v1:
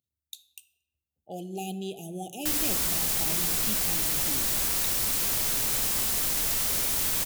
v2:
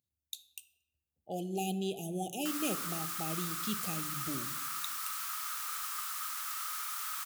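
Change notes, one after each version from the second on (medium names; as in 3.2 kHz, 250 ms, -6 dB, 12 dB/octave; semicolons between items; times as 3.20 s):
background: add ladder high-pass 1.2 kHz, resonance 85%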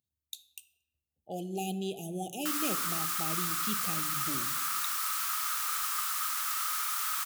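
background +6.0 dB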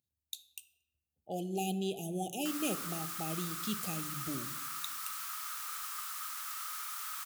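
background -8.5 dB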